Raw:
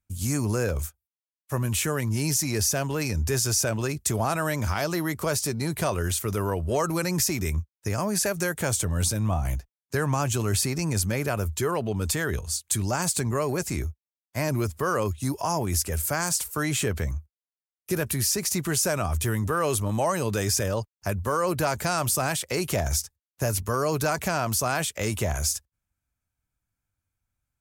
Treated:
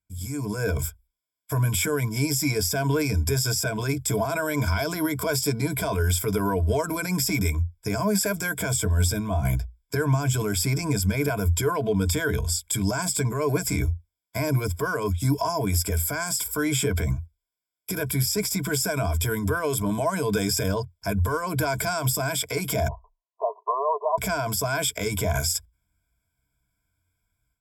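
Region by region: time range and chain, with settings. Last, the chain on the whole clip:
22.88–24.18 s: brick-wall FIR band-pass 370–1200 Hz + comb 1.1 ms, depth 71%
whole clip: peak limiter -22.5 dBFS; rippled EQ curve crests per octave 1.7, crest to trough 17 dB; level rider gain up to 12 dB; trim -8 dB

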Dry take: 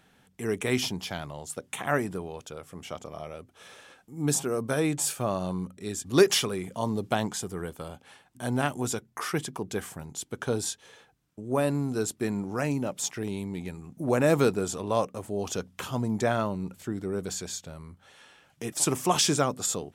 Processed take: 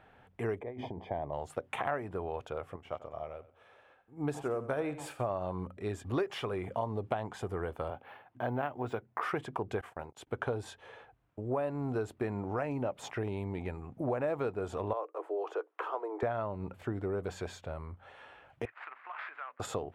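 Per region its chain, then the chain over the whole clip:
0.60–1.33 s: boxcar filter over 32 samples + compressor with a negative ratio -36 dBFS + bass shelf 180 Hz -9.5 dB
2.76–5.30 s: feedback delay 91 ms, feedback 30%, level -13 dB + upward expansion, over -47 dBFS
7.90–9.23 s: band-pass 110–3900 Hz + careless resampling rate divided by 3×, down none, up hold
9.81–10.27 s: gate -43 dBFS, range -30 dB + tone controls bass -8 dB, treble -2 dB
14.93–16.23 s: rippled Chebyshev high-pass 310 Hz, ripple 6 dB + treble shelf 2.1 kHz -8.5 dB + three bands compressed up and down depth 40%
18.65–19.60 s: median filter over 15 samples + compression, threshold -29 dBFS + Butterworth band-pass 1.9 kHz, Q 1.3
whole clip: FFT filter 110 Hz 0 dB, 170 Hz -11 dB, 680 Hz +3 dB, 2.6 kHz -6 dB, 5.9 kHz -23 dB; compression 6:1, threshold -35 dBFS; trim +4.5 dB

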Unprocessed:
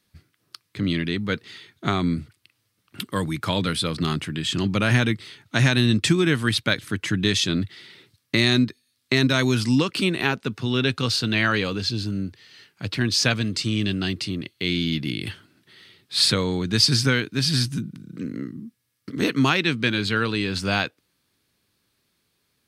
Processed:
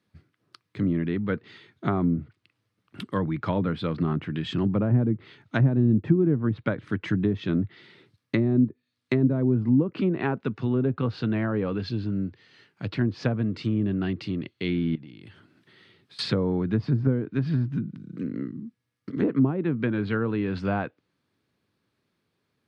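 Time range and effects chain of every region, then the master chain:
14.95–16.19 s: compression 12:1, threshold -39 dBFS + tape noise reduction on one side only encoder only
whole clip: low-pass 1.3 kHz 6 dB/octave; low-pass that closes with the level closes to 490 Hz, closed at -17.5 dBFS; high-pass 87 Hz

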